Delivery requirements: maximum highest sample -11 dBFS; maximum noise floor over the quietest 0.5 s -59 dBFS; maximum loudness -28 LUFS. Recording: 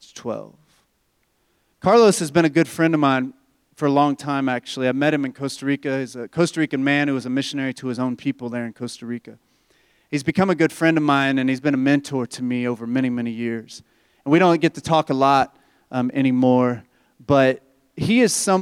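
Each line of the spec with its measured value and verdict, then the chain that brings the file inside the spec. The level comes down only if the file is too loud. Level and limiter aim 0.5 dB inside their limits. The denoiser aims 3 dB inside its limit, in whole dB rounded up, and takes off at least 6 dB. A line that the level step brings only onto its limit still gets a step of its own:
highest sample -4.5 dBFS: fail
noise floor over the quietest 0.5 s -67 dBFS: OK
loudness -20.0 LUFS: fail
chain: gain -8.5 dB

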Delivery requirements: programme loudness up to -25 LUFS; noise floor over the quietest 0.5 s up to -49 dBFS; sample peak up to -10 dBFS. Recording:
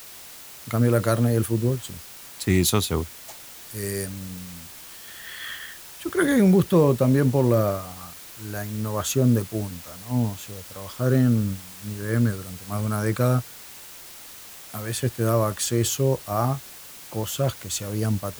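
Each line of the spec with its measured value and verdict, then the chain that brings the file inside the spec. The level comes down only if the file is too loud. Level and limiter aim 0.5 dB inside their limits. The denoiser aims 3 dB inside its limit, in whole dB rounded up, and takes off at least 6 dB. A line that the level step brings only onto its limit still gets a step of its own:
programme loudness -24.0 LUFS: fail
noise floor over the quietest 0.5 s -43 dBFS: fail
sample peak -6.5 dBFS: fail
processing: denoiser 8 dB, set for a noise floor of -43 dBFS; gain -1.5 dB; limiter -10.5 dBFS

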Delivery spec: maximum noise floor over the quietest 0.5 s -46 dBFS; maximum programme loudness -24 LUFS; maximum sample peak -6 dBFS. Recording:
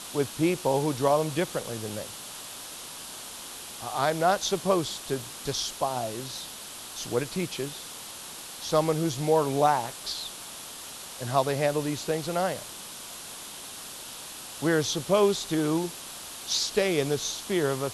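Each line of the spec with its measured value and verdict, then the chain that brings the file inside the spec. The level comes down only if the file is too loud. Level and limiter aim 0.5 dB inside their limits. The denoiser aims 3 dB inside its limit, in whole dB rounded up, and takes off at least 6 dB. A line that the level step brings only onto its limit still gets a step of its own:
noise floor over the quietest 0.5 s -41 dBFS: fail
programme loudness -29.0 LUFS: OK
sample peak -9.5 dBFS: OK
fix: denoiser 8 dB, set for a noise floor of -41 dBFS

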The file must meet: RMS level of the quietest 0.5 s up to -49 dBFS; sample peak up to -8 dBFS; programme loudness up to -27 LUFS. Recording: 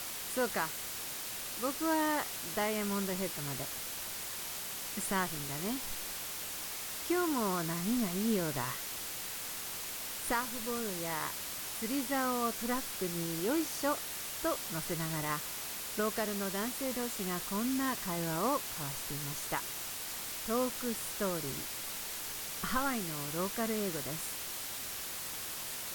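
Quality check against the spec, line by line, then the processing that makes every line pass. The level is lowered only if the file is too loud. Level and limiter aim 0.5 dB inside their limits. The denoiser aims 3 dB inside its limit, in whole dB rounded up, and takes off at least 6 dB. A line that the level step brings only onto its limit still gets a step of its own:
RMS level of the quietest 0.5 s -41 dBFS: fail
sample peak -19.5 dBFS: OK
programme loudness -35.0 LUFS: OK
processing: denoiser 11 dB, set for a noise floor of -41 dBFS

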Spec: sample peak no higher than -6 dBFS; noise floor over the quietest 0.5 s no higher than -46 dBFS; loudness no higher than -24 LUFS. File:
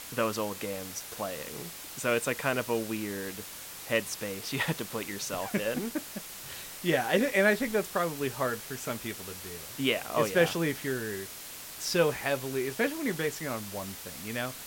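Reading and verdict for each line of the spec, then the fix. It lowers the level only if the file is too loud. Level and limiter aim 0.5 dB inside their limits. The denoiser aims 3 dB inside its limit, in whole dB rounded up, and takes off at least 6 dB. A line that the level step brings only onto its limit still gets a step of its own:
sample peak -11.5 dBFS: OK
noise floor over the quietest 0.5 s -44 dBFS: fail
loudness -31.5 LUFS: OK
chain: denoiser 6 dB, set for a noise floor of -44 dBFS

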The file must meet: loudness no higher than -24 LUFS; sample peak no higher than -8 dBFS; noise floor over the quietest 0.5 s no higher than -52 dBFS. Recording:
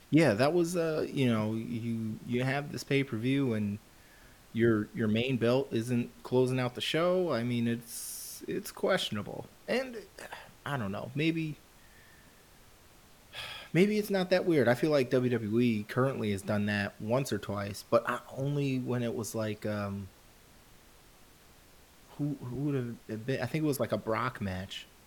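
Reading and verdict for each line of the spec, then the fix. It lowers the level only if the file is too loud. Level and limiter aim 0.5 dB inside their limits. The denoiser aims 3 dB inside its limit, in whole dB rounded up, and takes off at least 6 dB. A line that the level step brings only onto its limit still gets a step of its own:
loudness -31.5 LUFS: OK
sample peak -13.5 dBFS: OK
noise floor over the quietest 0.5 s -58 dBFS: OK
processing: none

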